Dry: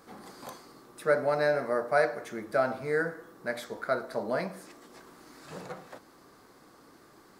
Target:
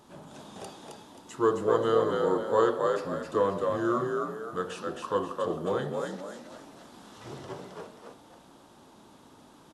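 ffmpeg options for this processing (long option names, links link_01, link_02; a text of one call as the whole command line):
ffmpeg -i in.wav -filter_complex "[0:a]asplit=6[link_01][link_02][link_03][link_04][link_05][link_06];[link_02]adelay=202,afreqshift=62,volume=-3.5dB[link_07];[link_03]adelay=404,afreqshift=124,volume=-12.1dB[link_08];[link_04]adelay=606,afreqshift=186,volume=-20.8dB[link_09];[link_05]adelay=808,afreqshift=248,volume=-29.4dB[link_10];[link_06]adelay=1010,afreqshift=310,volume=-38dB[link_11];[link_01][link_07][link_08][link_09][link_10][link_11]amix=inputs=6:normalize=0,asetrate=33516,aresample=44100" out.wav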